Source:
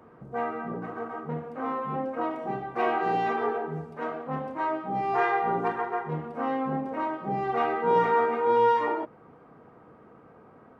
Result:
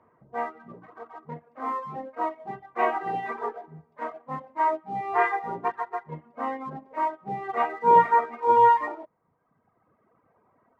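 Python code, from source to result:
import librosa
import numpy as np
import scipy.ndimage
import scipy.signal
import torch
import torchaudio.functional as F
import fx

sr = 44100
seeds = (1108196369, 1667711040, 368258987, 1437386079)

p1 = scipy.signal.sosfilt(scipy.signal.butter(2, 3400.0, 'lowpass', fs=sr, output='sos'), x)
p2 = fx.dereverb_blind(p1, sr, rt60_s=1.8)
p3 = fx.graphic_eq_31(p2, sr, hz=(100, 630, 1000, 2000), db=(5, 6, 10, 9))
p4 = np.sign(p3) * np.maximum(np.abs(p3) - 10.0 ** (-39.0 / 20.0), 0.0)
p5 = p3 + (p4 * librosa.db_to_amplitude(-12.0))
y = fx.upward_expand(p5, sr, threshold_db=-37.0, expansion=1.5)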